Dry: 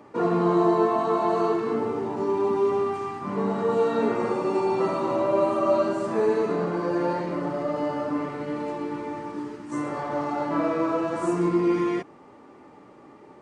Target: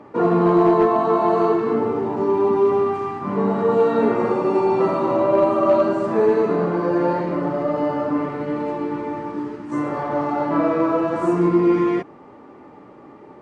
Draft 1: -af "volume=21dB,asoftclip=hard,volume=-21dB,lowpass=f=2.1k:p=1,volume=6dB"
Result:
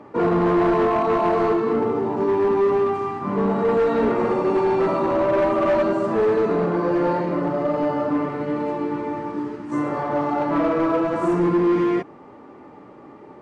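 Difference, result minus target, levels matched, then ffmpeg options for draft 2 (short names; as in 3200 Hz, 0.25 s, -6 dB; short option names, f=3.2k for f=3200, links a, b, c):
overloaded stage: distortion +16 dB
-af "volume=14.5dB,asoftclip=hard,volume=-14.5dB,lowpass=f=2.1k:p=1,volume=6dB"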